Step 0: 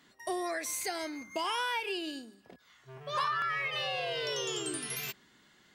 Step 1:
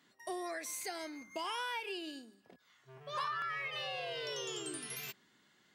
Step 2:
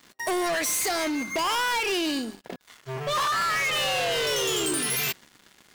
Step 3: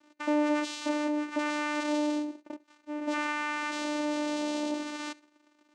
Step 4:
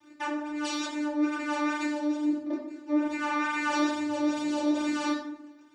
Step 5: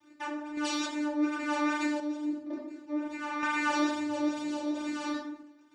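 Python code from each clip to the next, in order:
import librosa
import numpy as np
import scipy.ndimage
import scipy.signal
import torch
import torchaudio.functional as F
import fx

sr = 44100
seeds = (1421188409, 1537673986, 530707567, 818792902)

y1 = scipy.signal.sosfilt(scipy.signal.butter(2, 100.0, 'highpass', fs=sr, output='sos'), x)
y1 = y1 * librosa.db_to_amplitude(-6.0)
y2 = fx.leveller(y1, sr, passes=5)
y2 = y2 * librosa.db_to_amplitude(4.5)
y3 = fx.rider(y2, sr, range_db=10, speed_s=2.0)
y3 = fx.vocoder(y3, sr, bands=4, carrier='saw', carrier_hz=298.0)
y3 = y3 + 10.0 ** (-22.5 / 20.0) * np.pad(y3, (int(70 * sr / 1000.0), 0))[:len(y3)]
y3 = y3 * librosa.db_to_amplitude(-4.0)
y4 = fx.over_compress(y3, sr, threshold_db=-34.0, ratio=-1.0)
y4 = fx.phaser_stages(y4, sr, stages=12, low_hz=140.0, high_hz=1100.0, hz=2.3, feedback_pct=25)
y4 = fx.rev_fdn(y4, sr, rt60_s=0.81, lf_ratio=1.5, hf_ratio=0.6, size_ms=54.0, drr_db=-4.5)
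y5 = fx.tremolo_random(y4, sr, seeds[0], hz=3.5, depth_pct=55)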